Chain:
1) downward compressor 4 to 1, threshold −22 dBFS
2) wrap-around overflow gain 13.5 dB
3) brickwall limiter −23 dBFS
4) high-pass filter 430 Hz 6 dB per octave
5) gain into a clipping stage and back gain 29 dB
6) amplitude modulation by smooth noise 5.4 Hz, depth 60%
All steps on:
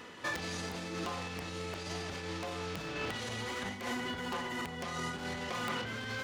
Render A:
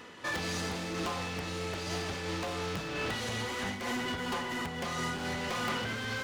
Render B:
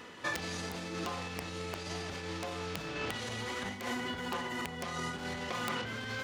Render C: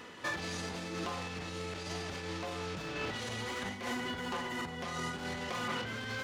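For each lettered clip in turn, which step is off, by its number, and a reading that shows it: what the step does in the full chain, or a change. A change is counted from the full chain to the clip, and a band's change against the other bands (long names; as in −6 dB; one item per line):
3, average gain reduction 5.0 dB
5, distortion level −19 dB
2, distortion level −15 dB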